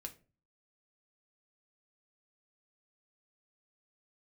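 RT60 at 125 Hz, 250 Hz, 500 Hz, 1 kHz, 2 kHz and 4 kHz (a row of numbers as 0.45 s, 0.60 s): 0.55 s, 0.50 s, 0.40 s, 0.30 s, 0.30 s, 0.25 s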